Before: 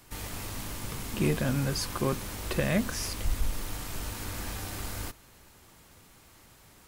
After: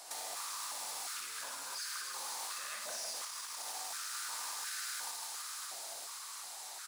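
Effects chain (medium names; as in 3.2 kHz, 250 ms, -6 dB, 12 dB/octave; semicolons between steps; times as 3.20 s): high-order bell 6.3 kHz +10 dB; in parallel at -7 dB: bit crusher 6-bit; on the sum: peak limiter -20 dBFS, peak gain reduction 11 dB; reverse bouncing-ball echo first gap 60 ms, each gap 1.6×, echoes 5; hard clipper -24 dBFS, distortion -14 dB; compression 6:1, threshold -41 dBFS, peak gain reduction 14 dB; on a send: feedback echo behind a high-pass 258 ms, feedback 84%, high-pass 2.1 kHz, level -8 dB; on the sum: step-sequenced high-pass 2.8 Hz 690–1500 Hz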